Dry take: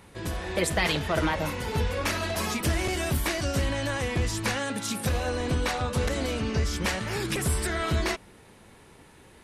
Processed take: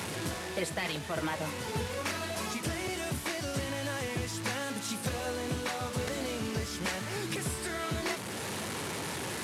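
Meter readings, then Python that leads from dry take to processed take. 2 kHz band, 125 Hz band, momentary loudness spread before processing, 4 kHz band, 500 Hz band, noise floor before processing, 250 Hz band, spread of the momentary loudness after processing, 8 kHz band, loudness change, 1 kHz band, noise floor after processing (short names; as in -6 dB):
-5.5 dB, -8.5 dB, 4 LU, -4.5 dB, -5.5 dB, -53 dBFS, -5.5 dB, 2 LU, -3.5 dB, -6.5 dB, -5.0 dB, -39 dBFS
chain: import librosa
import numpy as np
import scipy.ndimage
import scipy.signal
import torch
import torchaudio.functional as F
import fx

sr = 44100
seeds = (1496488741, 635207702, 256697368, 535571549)

y = fx.delta_mod(x, sr, bps=64000, step_db=-29.5)
y = scipy.signal.sosfilt(scipy.signal.butter(4, 93.0, 'highpass', fs=sr, output='sos'), y)
y = fx.rider(y, sr, range_db=5, speed_s=0.5)
y = F.gain(torch.from_numpy(y), -5.5).numpy()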